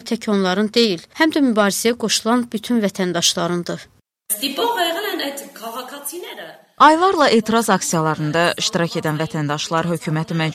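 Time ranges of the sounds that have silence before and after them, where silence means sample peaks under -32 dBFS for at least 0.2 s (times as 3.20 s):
4.30–6.55 s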